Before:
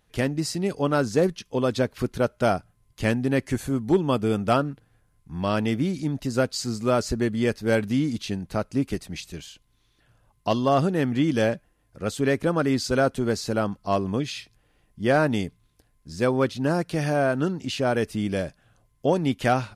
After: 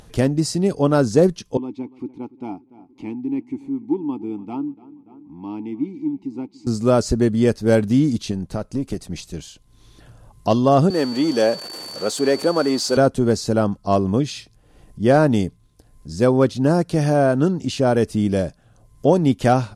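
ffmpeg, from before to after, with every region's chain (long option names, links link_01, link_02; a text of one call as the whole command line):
ffmpeg -i in.wav -filter_complex "[0:a]asettb=1/sr,asplit=3[link_01][link_02][link_03];[link_01]atrim=end=1.574[link_04];[link_02]atrim=start=1.57:end=6.67,asetpts=PTS-STARTPTS,afade=type=in:duration=0.004:curve=qsin,afade=type=out:start_time=5.096:duration=0.004:curve=qsin,asplit=3[link_05][link_06][link_07];[link_05]bandpass=frequency=300:width_type=q:width=8,volume=0dB[link_08];[link_06]bandpass=frequency=870:width_type=q:width=8,volume=-6dB[link_09];[link_07]bandpass=frequency=2240:width_type=q:width=8,volume=-9dB[link_10];[link_08][link_09][link_10]amix=inputs=3:normalize=0,asplit=2[link_11][link_12];[link_12]adelay=290,lowpass=frequency=2800:poles=1,volume=-19dB,asplit=2[link_13][link_14];[link_14]adelay=290,lowpass=frequency=2800:poles=1,volume=0.46,asplit=2[link_15][link_16];[link_16]adelay=290,lowpass=frequency=2800:poles=1,volume=0.46,asplit=2[link_17][link_18];[link_18]adelay=290,lowpass=frequency=2800:poles=1,volume=0.46[link_19];[link_11][link_13][link_15][link_17][link_19]amix=inputs=5:normalize=0,atrim=end_sample=224910[link_20];[link_03]atrim=start=6.666[link_21];[link_04][link_20]acrossfade=duration=0.004:curve1=hsin:curve2=qsin[link_22];[link_22][link_21]acrossfade=duration=0.004:curve1=qsin:curve2=hsin,asettb=1/sr,asplit=3[link_23][link_24][link_25];[link_23]atrim=end=8.314[link_26];[link_24]atrim=start=8.31:end=9.38,asetpts=PTS-STARTPTS,afade=type=in:duration=0.004:curve=qsin,afade=type=out:start_time=1.066:duration=0.004:curve=qsin,aeval=exprs='if(lt(val(0),0),0.708*val(0),val(0))':channel_layout=same,acompressor=threshold=-27dB:ratio=3:attack=3.2:release=140:knee=1:detection=peak[link_27];[link_25]atrim=start=9.376[link_28];[link_26][link_27]acrossfade=duration=0.004:curve1=hsin:curve2=qsin[link_29];[link_29][link_28]acrossfade=duration=0.004:curve1=qsin:curve2=hsin,asettb=1/sr,asplit=3[link_30][link_31][link_32];[link_30]atrim=end=10.904[link_33];[link_31]atrim=start=10.9:end=12.97,asetpts=PTS-STARTPTS,afade=type=in:duration=0.004:curve=qsin,afade=type=out:start_time=2.066:duration=0.004:curve=qsin,aeval=exprs='val(0)+0.5*0.0251*sgn(val(0))':channel_layout=same,highpass=350,aeval=exprs='val(0)+0.0158*sin(2*PI*4500*n/s)':channel_layout=same[link_34];[link_32]atrim=start=12.966[link_35];[link_33][link_34]acrossfade=duration=0.004:curve1=hsin:curve2=qsin[link_36];[link_36][link_35]acrossfade=duration=0.004:curve1=qsin:curve2=hsin,lowpass=9900,equalizer=frequency=2200:width=0.69:gain=-9.5,acompressor=mode=upward:threshold=-43dB:ratio=2.5,volume=7.5dB" out.wav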